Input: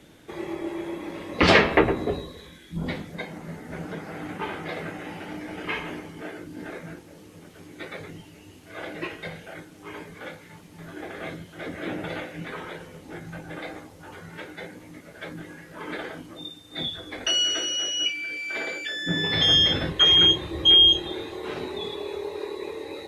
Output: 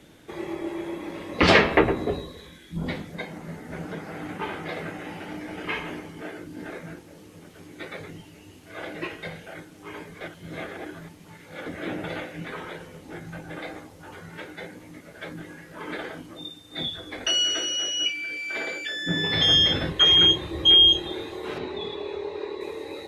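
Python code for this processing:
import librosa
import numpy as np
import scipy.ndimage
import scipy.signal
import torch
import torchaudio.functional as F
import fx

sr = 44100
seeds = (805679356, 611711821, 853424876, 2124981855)

y = fx.lowpass(x, sr, hz=4500.0, slope=12, at=(21.58, 22.61))
y = fx.edit(y, sr, fx.reverse_span(start_s=10.21, length_s=1.45), tone=tone)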